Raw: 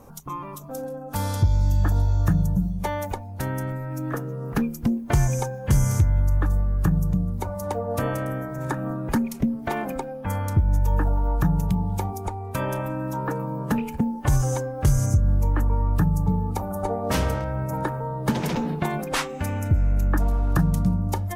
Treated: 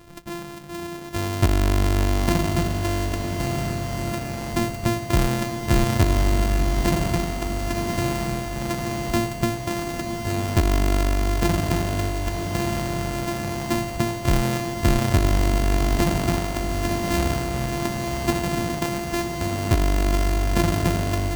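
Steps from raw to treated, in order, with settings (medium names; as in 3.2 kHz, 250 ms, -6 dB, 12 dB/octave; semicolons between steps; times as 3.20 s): sorted samples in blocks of 128 samples; formant shift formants -5 st; echo that smears into a reverb 1043 ms, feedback 48%, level -6 dB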